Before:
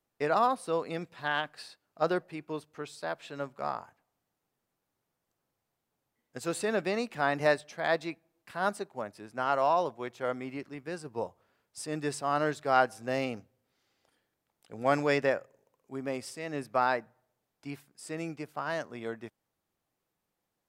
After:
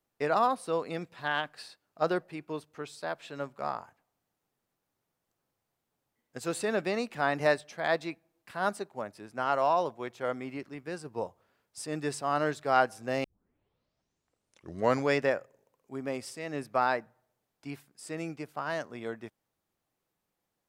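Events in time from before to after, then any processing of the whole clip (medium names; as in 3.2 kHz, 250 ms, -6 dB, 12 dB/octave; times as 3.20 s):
13.24 s: tape start 1.88 s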